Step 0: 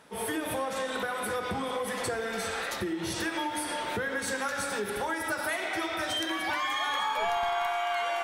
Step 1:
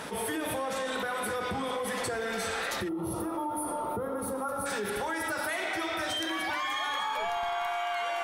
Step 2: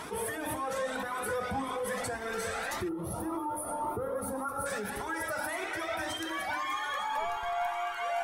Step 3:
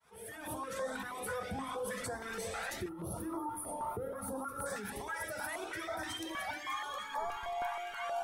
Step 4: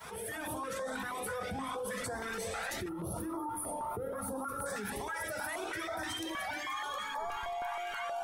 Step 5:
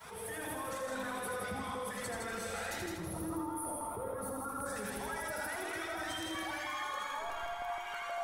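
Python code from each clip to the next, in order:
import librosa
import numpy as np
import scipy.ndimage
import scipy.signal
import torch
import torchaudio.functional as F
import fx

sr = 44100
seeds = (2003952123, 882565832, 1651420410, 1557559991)

y1 = fx.spec_box(x, sr, start_s=2.88, length_s=1.78, low_hz=1400.0, high_hz=8900.0, gain_db=-21)
y1 = fx.env_flatten(y1, sr, amount_pct=70)
y1 = y1 * librosa.db_to_amplitude(-3.5)
y2 = fx.dynamic_eq(y1, sr, hz=3500.0, q=1.0, threshold_db=-50.0, ratio=4.0, max_db=-6)
y2 = fx.comb_cascade(y2, sr, direction='rising', hz=1.8)
y2 = y2 * librosa.db_to_amplitude(3.5)
y3 = fx.fade_in_head(y2, sr, length_s=0.61)
y3 = fx.filter_held_notch(y3, sr, hz=6.3, low_hz=310.0, high_hz=2700.0)
y3 = y3 * librosa.db_to_amplitude(-3.5)
y4 = fx.env_flatten(y3, sr, amount_pct=70)
y4 = y4 * librosa.db_to_amplitude(-2.0)
y5 = fx.echo_heads(y4, sr, ms=81, heads='first and second', feedback_pct=47, wet_db=-6)
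y5 = y5 * librosa.db_to_amplitude(-3.5)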